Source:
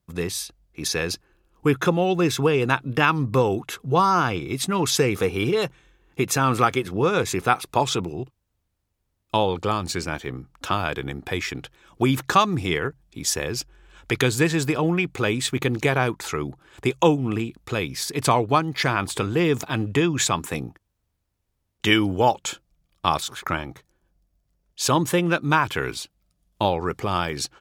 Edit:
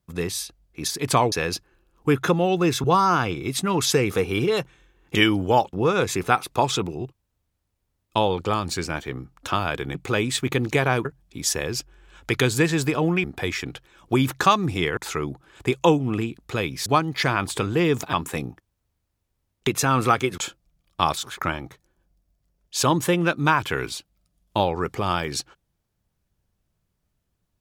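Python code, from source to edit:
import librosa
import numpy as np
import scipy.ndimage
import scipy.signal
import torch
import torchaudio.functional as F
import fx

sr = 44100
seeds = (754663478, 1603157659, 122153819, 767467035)

y = fx.edit(x, sr, fx.cut(start_s=2.42, length_s=1.47),
    fx.swap(start_s=6.2, length_s=0.71, other_s=21.85, other_length_s=0.58),
    fx.swap(start_s=11.13, length_s=1.73, other_s=15.05, other_length_s=1.1),
    fx.move(start_s=18.04, length_s=0.42, to_s=0.9),
    fx.cut(start_s=19.73, length_s=0.58), tone=tone)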